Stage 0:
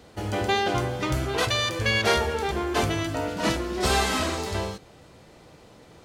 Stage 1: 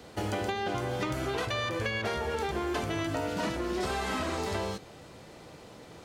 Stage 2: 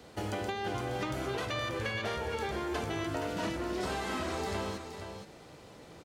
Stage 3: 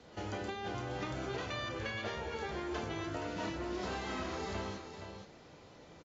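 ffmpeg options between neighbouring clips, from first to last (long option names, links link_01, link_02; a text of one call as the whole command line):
ffmpeg -i in.wav -filter_complex "[0:a]acrossover=split=200|2500[link_01][link_02][link_03];[link_01]acompressor=threshold=-33dB:ratio=4[link_04];[link_02]acompressor=threshold=-28dB:ratio=4[link_05];[link_03]acompressor=threshold=-42dB:ratio=4[link_06];[link_04][link_05][link_06]amix=inputs=3:normalize=0,lowshelf=frequency=64:gain=-7.5,acompressor=threshold=-30dB:ratio=6,volume=2dB" out.wav
ffmpeg -i in.wav -af "aecho=1:1:470:0.398,volume=-3.5dB" out.wav
ffmpeg -i in.wav -filter_complex "[0:a]asplit=2[link_01][link_02];[link_02]adelay=31,volume=-11dB[link_03];[link_01][link_03]amix=inputs=2:normalize=0,volume=-5dB" -ar 16000 -c:a aac -b:a 24k out.aac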